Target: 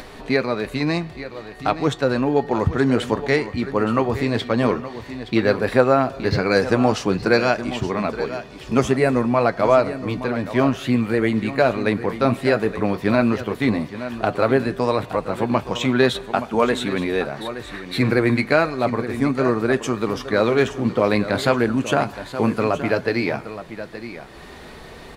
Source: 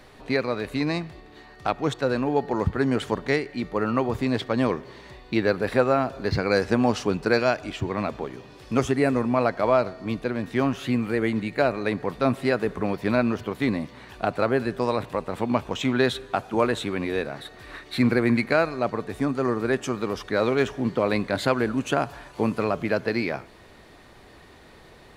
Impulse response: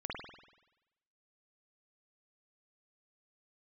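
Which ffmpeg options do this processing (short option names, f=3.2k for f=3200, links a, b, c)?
-af "aecho=1:1:871:0.237,acompressor=mode=upward:threshold=-36dB:ratio=2.5,flanger=delay=4.3:depth=5.7:regen=-63:speed=0.12:shape=triangular,volume=8.5dB"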